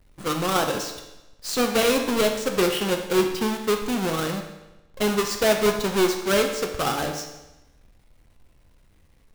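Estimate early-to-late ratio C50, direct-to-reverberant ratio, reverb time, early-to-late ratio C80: 6.5 dB, 3.5 dB, 1.0 s, 8.5 dB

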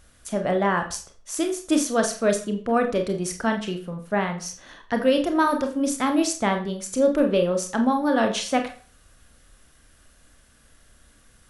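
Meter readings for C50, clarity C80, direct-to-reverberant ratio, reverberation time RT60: 11.0 dB, 14.5 dB, 4.5 dB, 0.40 s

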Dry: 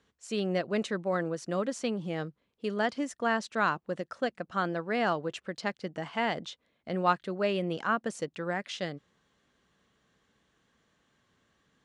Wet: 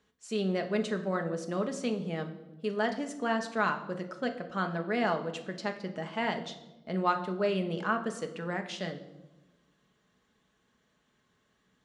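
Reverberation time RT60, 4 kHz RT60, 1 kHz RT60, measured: 1.1 s, 0.75 s, 0.90 s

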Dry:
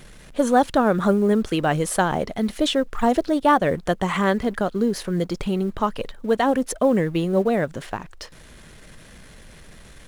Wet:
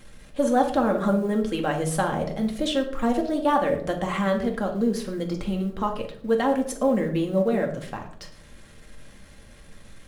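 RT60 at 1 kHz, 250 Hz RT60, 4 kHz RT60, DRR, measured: 0.50 s, 1.0 s, 0.40 s, 1.5 dB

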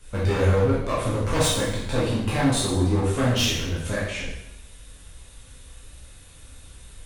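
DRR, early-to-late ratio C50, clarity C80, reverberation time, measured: −8.0 dB, 0.5 dB, 4.0 dB, 0.90 s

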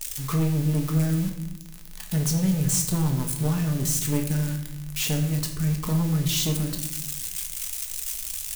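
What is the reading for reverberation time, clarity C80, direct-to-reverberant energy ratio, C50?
0.80 s, 10.0 dB, 2.5 dB, 8.0 dB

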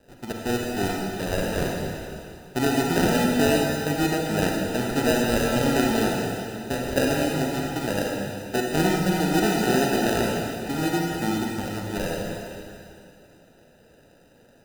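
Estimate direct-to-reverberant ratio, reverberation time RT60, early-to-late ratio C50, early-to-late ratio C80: −1.0 dB, 2.6 s, −0.5 dB, 1.0 dB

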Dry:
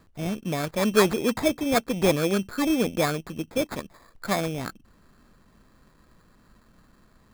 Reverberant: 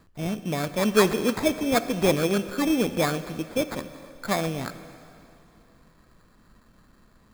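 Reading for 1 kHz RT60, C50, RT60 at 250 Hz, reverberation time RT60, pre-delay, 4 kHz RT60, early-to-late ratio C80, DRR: 2.8 s, 12.5 dB, 2.8 s, 2.8 s, 8 ms, 2.6 s, 13.0 dB, 11.5 dB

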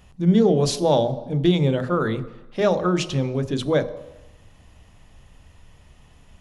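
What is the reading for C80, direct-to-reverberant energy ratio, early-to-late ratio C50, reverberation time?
16.0 dB, 12.0 dB, 14.5 dB, 1.0 s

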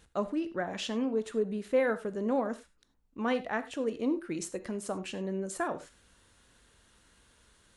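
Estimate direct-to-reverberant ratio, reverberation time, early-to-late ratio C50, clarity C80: 11.0 dB, non-exponential decay, 14.5 dB, 19.0 dB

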